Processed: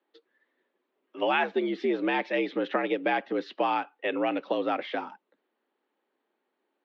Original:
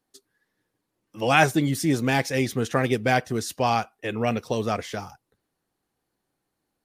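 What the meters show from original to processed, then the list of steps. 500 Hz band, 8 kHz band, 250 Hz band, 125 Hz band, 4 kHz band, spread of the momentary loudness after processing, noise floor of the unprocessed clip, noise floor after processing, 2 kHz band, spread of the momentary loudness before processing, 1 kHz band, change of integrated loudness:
-2.5 dB, under -30 dB, -5.0 dB, under -20 dB, -6.0 dB, 6 LU, -80 dBFS, -81 dBFS, -5.0 dB, 11 LU, -4.0 dB, -4.5 dB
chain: compressor 4:1, threshold -24 dBFS, peak gain reduction 10.5 dB; mistuned SSB +66 Hz 180–3500 Hz; gain +1.5 dB

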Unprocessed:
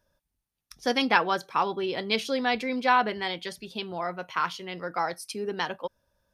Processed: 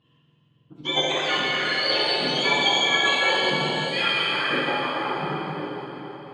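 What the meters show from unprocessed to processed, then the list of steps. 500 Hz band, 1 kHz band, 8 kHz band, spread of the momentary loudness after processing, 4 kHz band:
+3.0 dB, +0.5 dB, +7.5 dB, 13 LU, +12.0 dB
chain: spectrum mirrored in octaves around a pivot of 1300 Hz; compressor 6:1, threshold -30 dBFS, peak gain reduction 11 dB; low-pass sweep 3300 Hz -> 120 Hz, 4.24–6.02; auto swell 0.115 s; on a send: thin delay 0.162 s, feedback 74%, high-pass 2900 Hz, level -10 dB; on the sum: plate-style reverb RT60 4 s, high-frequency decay 0.85×, DRR -7.5 dB; gain +4.5 dB

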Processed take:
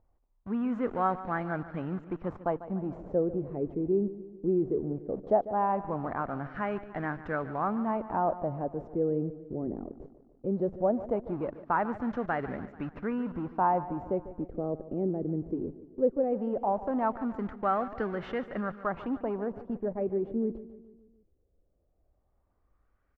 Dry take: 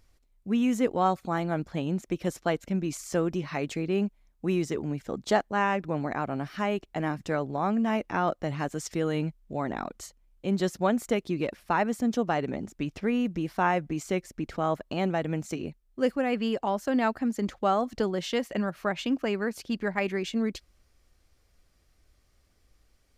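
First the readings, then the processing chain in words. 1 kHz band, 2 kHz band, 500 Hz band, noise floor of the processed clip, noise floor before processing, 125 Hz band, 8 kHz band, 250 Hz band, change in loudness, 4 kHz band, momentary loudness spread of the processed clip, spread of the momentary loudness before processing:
-1.5 dB, -7.0 dB, -1.0 dB, -72 dBFS, -66 dBFS, -4.0 dB, under -35 dB, -4.0 dB, -2.5 dB, under -20 dB, 8 LU, 7 LU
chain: in parallel at -10 dB: Schmitt trigger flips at -37 dBFS; on the sum: LFO low-pass sine 0.18 Hz 380–1600 Hz; feedback echo 0.146 s, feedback 54%, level -15 dB; gain -7 dB

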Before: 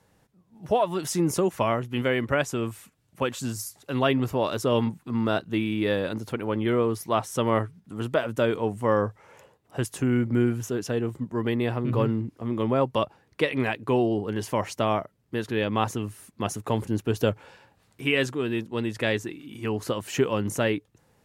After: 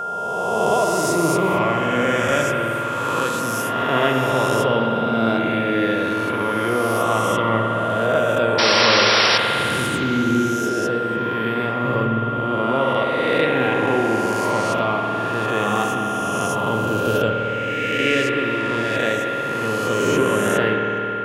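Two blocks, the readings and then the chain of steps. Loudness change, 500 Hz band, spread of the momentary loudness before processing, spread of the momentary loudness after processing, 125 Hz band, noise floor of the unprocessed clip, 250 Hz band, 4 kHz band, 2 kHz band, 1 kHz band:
+7.5 dB, +6.5 dB, 8 LU, 5 LU, +2.5 dB, -66 dBFS, +4.5 dB, +12.5 dB, +11.5 dB, +11.5 dB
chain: spectral swells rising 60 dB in 2.09 s; HPF 100 Hz; painted sound noise, 8.58–9.38, 310–5800 Hz -17 dBFS; spring tank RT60 3.7 s, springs 53 ms, chirp 80 ms, DRR 0.5 dB; whine 1400 Hz -23 dBFS; gain -1 dB

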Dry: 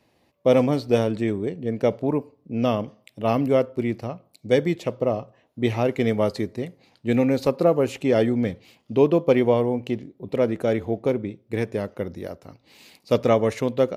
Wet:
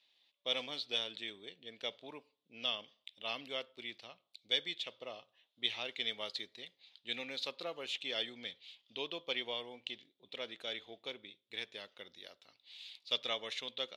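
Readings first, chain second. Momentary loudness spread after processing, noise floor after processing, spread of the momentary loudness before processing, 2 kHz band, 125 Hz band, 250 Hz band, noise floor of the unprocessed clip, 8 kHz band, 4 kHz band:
16 LU, -82 dBFS, 13 LU, -8.5 dB, -37.0 dB, -30.5 dB, -65 dBFS, n/a, +4.0 dB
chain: band-pass 3500 Hz, Q 6.1; gain +7.5 dB

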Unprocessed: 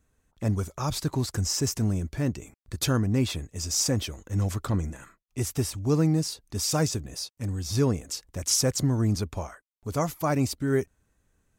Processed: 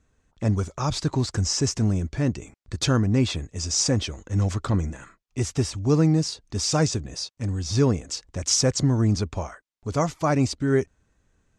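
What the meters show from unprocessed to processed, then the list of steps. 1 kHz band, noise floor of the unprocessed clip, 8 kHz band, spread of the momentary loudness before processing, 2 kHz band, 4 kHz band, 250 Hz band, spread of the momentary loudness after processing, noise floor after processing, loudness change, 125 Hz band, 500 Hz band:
+3.5 dB, -74 dBFS, +2.0 dB, 10 LU, +3.5 dB, +3.5 dB, +3.5 dB, 10 LU, -71 dBFS, +3.0 dB, +3.5 dB, +3.5 dB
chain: LPF 7500 Hz 24 dB/oct; gain +3.5 dB

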